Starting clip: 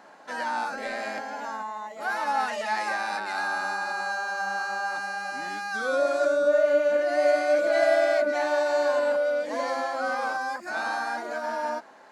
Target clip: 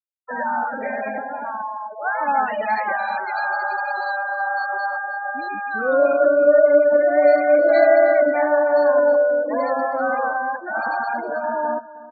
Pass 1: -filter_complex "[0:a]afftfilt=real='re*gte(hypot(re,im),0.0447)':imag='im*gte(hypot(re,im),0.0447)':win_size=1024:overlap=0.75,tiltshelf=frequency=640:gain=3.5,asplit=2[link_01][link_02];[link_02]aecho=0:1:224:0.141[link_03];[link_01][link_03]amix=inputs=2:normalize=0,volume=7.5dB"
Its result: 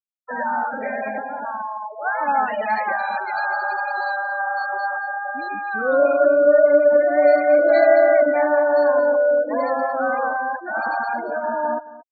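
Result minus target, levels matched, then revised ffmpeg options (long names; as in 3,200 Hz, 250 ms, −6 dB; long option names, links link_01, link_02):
echo 92 ms early
-filter_complex "[0:a]afftfilt=real='re*gte(hypot(re,im),0.0447)':imag='im*gte(hypot(re,im),0.0447)':win_size=1024:overlap=0.75,tiltshelf=frequency=640:gain=3.5,asplit=2[link_01][link_02];[link_02]aecho=0:1:316:0.141[link_03];[link_01][link_03]amix=inputs=2:normalize=0,volume=7.5dB"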